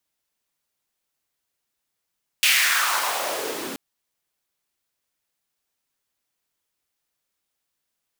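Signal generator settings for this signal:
filter sweep on noise pink, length 1.33 s highpass, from 2,700 Hz, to 260 Hz, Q 2.6, exponential, gain ramp −17 dB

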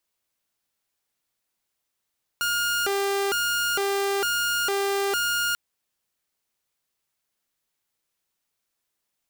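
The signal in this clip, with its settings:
siren hi-lo 397–1,420 Hz 1.1 per second saw −20 dBFS 3.14 s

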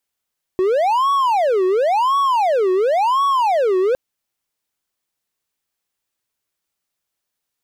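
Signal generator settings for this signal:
siren wail 368–1,120 Hz 0.94 per second triangle −11.5 dBFS 3.36 s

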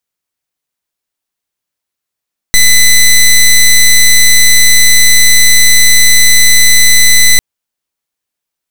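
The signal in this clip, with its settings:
pulse wave 2,010 Hz, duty 12% −4 dBFS 4.85 s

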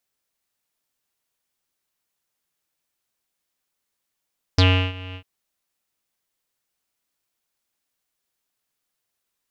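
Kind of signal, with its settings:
subtractive voice square F#2 12 dB per octave, low-pass 2,800 Hz, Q 9.7, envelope 1 octave, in 0.06 s, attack 5 ms, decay 0.34 s, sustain −21.5 dB, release 0.08 s, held 0.57 s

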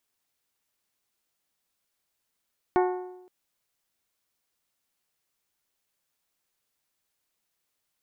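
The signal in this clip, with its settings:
struck metal bell, length 0.52 s, lowest mode 365 Hz, modes 7, decay 0.92 s, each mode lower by 4 dB, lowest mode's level −18.5 dB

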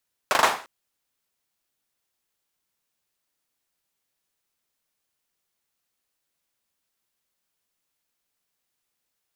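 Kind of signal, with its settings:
synth clap length 0.35 s, bursts 4, apart 40 ms, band 910 Hz, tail 0.40 s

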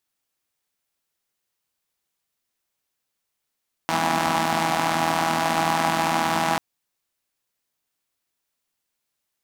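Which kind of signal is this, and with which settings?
pulse-train model of a four-cylinder engine, steady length 2.69 s, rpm 4,900, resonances 250/790 Hz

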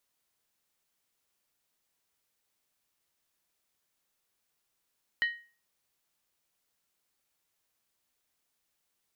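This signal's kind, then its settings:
struck skin, lowest mode 1,880 Hz, decay 0.37 s, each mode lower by 10 dB, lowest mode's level −22 dB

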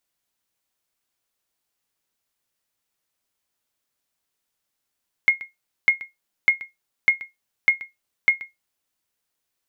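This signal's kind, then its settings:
ping with an echo 2,150 Hz, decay 0.17 s, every 0.60 s, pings 6, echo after 0.13 s, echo −18.5 dB −7 dBFS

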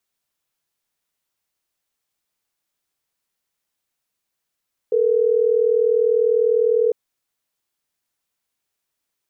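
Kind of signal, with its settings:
call progress tone ringback tone, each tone −17 dBFS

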